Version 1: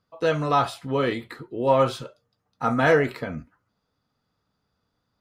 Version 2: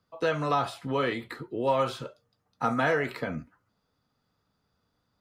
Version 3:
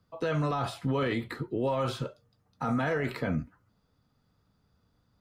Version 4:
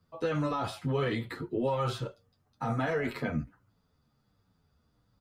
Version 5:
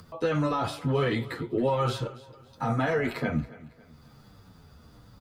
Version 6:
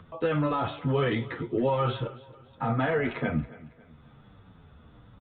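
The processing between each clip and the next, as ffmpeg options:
ffmpeg -i in.wav -filter_complex "[0:a]acrossover=split=110|670|2700[link_01][link_02][link_03][link_04];[link_01]acompressor=threshold=-52dB:ratio=4[link_05];[link_02]acompressor=threshold=-29dB:ratio=4[link_06];[link_03]acompressor=threshold=-26dB:ratio=4[link_07];[link_04]acompressor=threshold=-43dB:ratio=4[link_08];[link_05][link_06][link_07][link_08]amix=inputs=4:normalize=0" out.wav
ffmpeg -i in.wav -af "lowshelf=frequency=230:gain=10,alimiter=limit=-21dB:level=0:latency=1:release=12" out.wav
ffmpeg -i in.wav -filter_complex "[0:a]asplit=2[link_01][link_02];[link_02]adelay=9,afreqshift=-1.3[link_03];[link_01][link_03]amix=inputs=2:normalize=1,volume=2dB" out.wav
ffmpeg -i in.wav -af "acompressor=mode=upward:threshold=-43dB:ratio=2.5,aecho=1:1:276|552|828:0.112|0.0415|0.0154,volume=4dB" out.wav
ffmpeg -i in.wav -af "aresample=8000,aresample=44100" out.wav

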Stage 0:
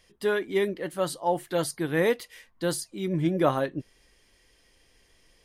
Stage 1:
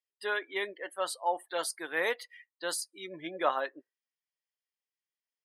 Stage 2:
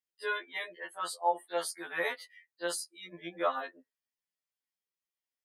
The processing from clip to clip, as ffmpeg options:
ffmpeg -i in.wav -af "highpass=780,afftdn=noise_reduction=34:noise_floor=-45,highshelf=frequency=11000:gain=-3.5" out.wav
ffmpeg -i in.wav -af "afftfilt=real='re*2*eq(mod(b,4),0)':imag='im*2*eq(mod(b,4),0)':win_size=2048:overlap=0.75" out.wav

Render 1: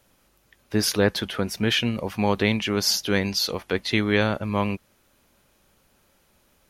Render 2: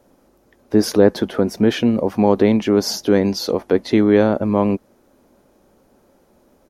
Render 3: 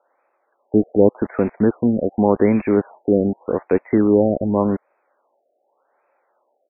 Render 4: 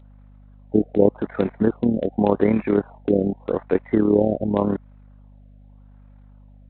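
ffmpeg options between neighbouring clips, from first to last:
ffmpeg -i in.wav -filter_complex "[0:a]firequalizer=gain_entry='entry(120,0);entry(260,11);entry(370,10);entry(720,7);entry(1200,0);entry(2700,-9);entry(5500,-4);entry(8800,-6)':delay=0.05:min_phase=1,asplit=2[link_01][link_02];[link_02]alimiter=limit=-12.5dB:level=0:latency=1:release=55,volume=-2dB[link_03];[link_01][link_03]amix=inputs=2:normalize=0,volume=-2dB" out.wav
ffmpeg -i in.wav -filter_complex "[0:a]acrossover=split=600|1600[link_01][link_02][link_03];[link_01]aeval=exprs='val(0)*gte(abs(val(0)),0.0501)':channel_layout=same[link_04];[link_04][link_02][link_03]amix=inputs=3:normalize=0,afftfilt=real='re*lt(b*sr/1024,750*pow(2700/750,0.5+0.5*sin(2*PI*0.86*pts/sr)))':imag='im*lt(b*sr/1024,750*pow(2700/750,0.5+0.5*sin(2*PI*0.86*pts/sr)))':win_size=1024:overlap=0.75,volume=-1dB" out.wav
ffmpeg -i in.wav -af "tremolo=f=37:d=0.621,aeval=exprs='val(0)+0.00501*(sin(2*PI*50*n/s)+sin(2*PI*2*50*n/s)/2+sin(2*PI*3*50*n/s)/3+sin(2*PI*4*50*n/s)/4+sin(2*PI*5*50*n/s)/5)':channel_layout=same" -ar 8000 -c:a adpcm_g726 -b:a 32k out.wav

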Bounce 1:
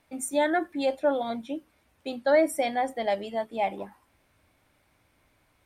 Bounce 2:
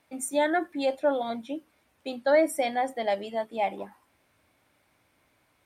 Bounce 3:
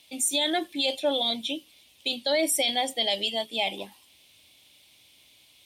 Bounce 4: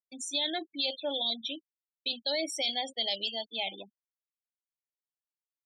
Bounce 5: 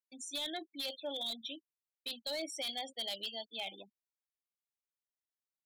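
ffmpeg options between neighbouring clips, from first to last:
ffmpeg -i in.wav -af "highpass=frequency=140:poles=1" out.wav
ffmpeg -i in.wav -af "highshelf=frequency=2200:width_type=q:width=3:gain=13.5,alimiter=limit=-15.5dB:level=0:latency=1:release=19" out.wav
ffmpeg -i in.wav -af "afftfilt=real='re*gte(hypot(re,im),0.0282)':imag='im*gte(hypot(re,im),0.0282)':win_size=1024:overlap=0.75,agate=range=-33dB:threshold=-45dB:ratio=3:detection=peak,lowpass=frequency=5300:width_type=q:width=3.8,volume=-8.5dB" out.wav
ffmpeg -i in.wav -af "aeval=exprs='0.0631*(abs(mod(val(0)/0.0631+3,4)-2)-1)':channel_layout=same,volume=-7dB" out.wav

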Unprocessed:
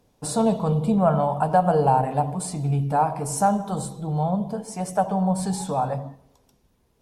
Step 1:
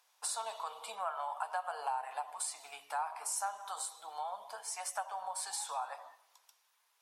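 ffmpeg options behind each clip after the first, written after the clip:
ffmpeg -i in.wav -af "highpass=frequency=980:width=0.5412,highpass=frequency=980:width=1.3066,acompressor=threshold=-39dB:ratio=2.5,volume=1dB" out.wav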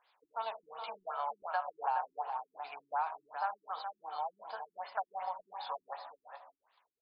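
ffmpeg -i in.wav -filter_complex "[0:a]asplit=2[link_01][link_02];[link_02]adelay=419.8,volume=-7dB,highshelf=frequency=4000:gain=-9.45[link_03];[link_01][link_03]amix=inputs=2:normalize=0,afftfilt=real='re*lt(b*sr/1024,360*pow(5200/360,0.5+0.5*sin(2*PI*2.7*pts/sr)))':imag='im*lt(b*sr/1024,360*pow(5200/360,0.5+0.5*sin(2*PI*2.7*pts/sr)))':win_size=1024:overlap=0.75,volume=2.5dB" out.wav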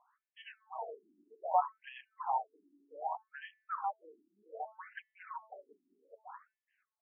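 ffmpeg -i in.wav -af "bandreject=frequency=218.8:width_type=h:width=4,bandreject=frequency=437.6:width_type=h:width=4,bandreject=frequency=656.4:width_type=h:width=4,bandreject=frequency=875.2:width_type=h:width=4,bandreject=frequency=1094:width_type=h:width=4,bandreject=frequency=1312.8:width_type=h:width=4,bandreject=frequency=1531.6:width_type=h:width=4,bandreject=frequency=1750.4:width_type=h:width=4,bandreject=frequency=1969.2:width_type=h:width=4,bandreject=frequency=2188:width_type=h:width=4,bandreject=frequency=2406.8:width_type=h:width=4,bandreject=frequency=2625.6:width_type=h:width=4,bandreject=frequency=2844.4:width_type=h:width=4,bandreject=frequency=3063.2:width_type=h:width=4,bandreject=frequency=3282:width_type=h:width=4,bandreject=frequency=3500.8:width_type=h:width=4,bandreject=frequency=3719.6:width_type=h:width=4,bandreject=frequency=3938.4:width_type=h:width=4,bandreject=frequency=4157.2:width_type=h:width=4,bandreject=frequency=4376:width_type=h:width=4,bandreject=frequency=4594.8:width_type=h:width=4,bandreject=frequency=4813.6:width_type=h:width=4,bandreject=frequency=5032.4:width_type=h:width=4,bandreject=frequency=5251.2:width_type=h:width=4,bandreject=frequency=5470:width_type=h:width=4,bandreject=frequency=5688.8:width_type=h:width=4,bandreject=frequency=5907.6:width_type=h:width=4,bandreject=frequency=6126.4:width_type=h:width=4,bandreject=frequency=6345.2:width_type=h:width=4,bandreject=frequency=6564:width_type=h:width=4,adynamicsmooth=sensitivity=2.5:basefreq=1700,afftfilt=real='re*between(b*sr/1024,260*pow(2400/260,0.5+0.5*sin(2*PI*0.64*pts/sr))/1.41,260*pow(2400/260,0.5+0.5*sin(2*PI*0.64*pts/sr))*1.41)':imag='im*between(b*sr/1024,260*pow(2400/260,0.5+0.5*sin(2*PI*0.64*pts/sr))/1.41,260*pow(2400/260,0.5+0.5*sin(2*PI*0.64*pts/sr))*1.41)':win_size=1024:overlap=0.75,volume=7.5dB" out.wav

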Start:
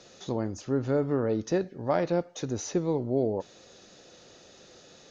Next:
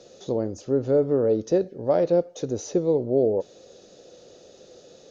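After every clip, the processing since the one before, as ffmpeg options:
ffmpeg -i in.wav -af "equalizer=frequency=500:width_type=o:width=1:gain=10,equalizer=frequency=1000:width_type=o:width=1:gain=-5,equalizer=frequency=2000:width_type=o:width=1:gain=-6" out.wav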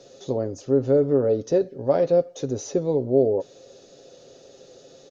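ffmpeg -i in.wav -af "aecho=1:1:7.4:0.45" out.wav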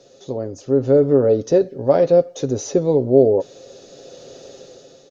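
ffmpeg -i in.wav -af "dynaudnorm=framelen=320:gausssize=5:maxgain=13.5dB,volume=-1dB" out.wav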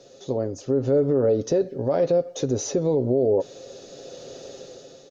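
ffmpeg -i in.wav -af "alimiter=limit=-13dB:level=0:latency=1:release=95" out.wav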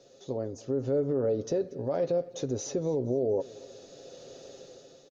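ffmpeg -i in.wav -af "aecho=1:1:235|470|705:0.0841|0.037|0.0163,volume=-7.5dB" out.wav

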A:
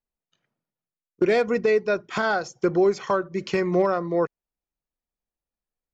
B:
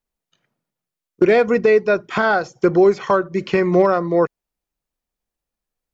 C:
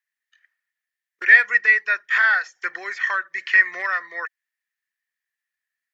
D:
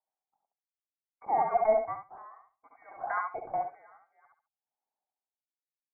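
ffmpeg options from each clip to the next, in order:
ffmpeg -i in.wav -filter_complex "[0:a]acrossover=split=3600[link_01][link_02];[link_02]acompressor=threshold=-50dB:ratio=4:attack=1:release=60[link_03];[link_01][link_03]amix=inputs=2:normalize=0,volume=6.5dB" out.wav
ffmpeg -i in.wav -af "highpass=frequency=1800:width_type=q:width=14,volume=-4dB" out.wav
ffmpeg -i in.wav -af "aecho=1:1:69|138|207:0.631|0.12|0.0228,lowpass=frequency=2200:width_type=q:width=0.5098,lowpass=frequency=2200:width_type=q:width=0.6013,lowpass=frequency=2200:width_type=q:width=0.9,lowpass=frequency=2200:width_type=q:width=2.563,afreqshift=-2600,aeval=exprs='val(0)*pow(10,-30*(0.5-0.5*cos(2*PI*0.61*n/s))/20)':channel_layout=same,volume=-7.5dB" out.wav

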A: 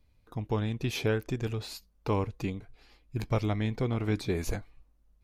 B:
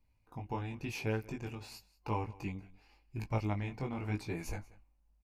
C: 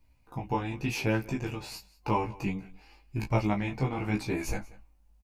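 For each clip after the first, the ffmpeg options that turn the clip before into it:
ffmpeg -i in.wav -af "flanger=delay=18:depth=3.7:speed=0.91,superequalizer=7b=0.708:9b=2:12b=1.58:13b=0.501,aecho=1:1:185:0.0841,volume=-4.5dB" out.wav
ffmpeg -i in.wav -filter_complex "[0:a]asplit=2[link_01][link_02];[link_02]adelay=15,volume=-4dB[link_03];[link_01][link_03]amix=inputs=2:normalize=0,volume=7dB" out.wav

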